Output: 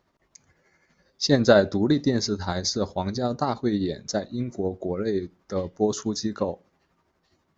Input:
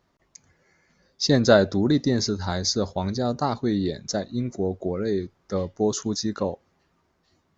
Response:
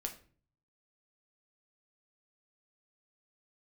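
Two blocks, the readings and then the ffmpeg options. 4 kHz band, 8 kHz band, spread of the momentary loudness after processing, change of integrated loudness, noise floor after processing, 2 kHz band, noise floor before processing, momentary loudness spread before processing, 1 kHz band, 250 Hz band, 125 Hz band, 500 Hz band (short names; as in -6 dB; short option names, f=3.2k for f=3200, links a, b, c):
-1.5 dB, n/a, 12 LU, -1.0 dB, -71 dBFS, -0.5 dB, -69 dBFS, 11 LU, -0.5 dB, -1.0 dB, -2.0 dB, 0.0 dB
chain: -filter_complex "[0:a]tremolo=f=12:d=0.44,asplit=2[a][b];[b]highpass=150,lowpass=4.4k[c];[1:a]atrim=start_sample=2205,asetrate=83790,aresample=44100[d];[c][d]afir=irnorm=-1:irlink=0,volume=-5.5dB[e];[a][e]amix=inputs=2:normalize=0"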